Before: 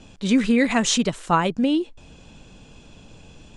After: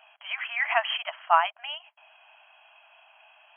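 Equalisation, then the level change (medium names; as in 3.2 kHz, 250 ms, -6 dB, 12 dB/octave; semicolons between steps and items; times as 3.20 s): brick-wall FIR band-pass 610–3300 Hz; 0.0 dB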